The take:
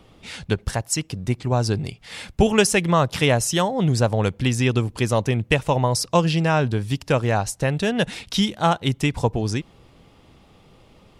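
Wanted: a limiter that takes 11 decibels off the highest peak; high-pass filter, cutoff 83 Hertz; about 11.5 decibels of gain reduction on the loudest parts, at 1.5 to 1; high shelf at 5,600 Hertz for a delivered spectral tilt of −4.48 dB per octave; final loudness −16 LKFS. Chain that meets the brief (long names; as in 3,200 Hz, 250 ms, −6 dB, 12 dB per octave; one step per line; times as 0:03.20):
high-pass filter 83 Hz
high-shelf EQ 5,600 Hz +7 dB
downward compressor 1.5 to 1, threshold −45 dBFS
level +18.5 dB
brickwall limiter −5.5 dBFS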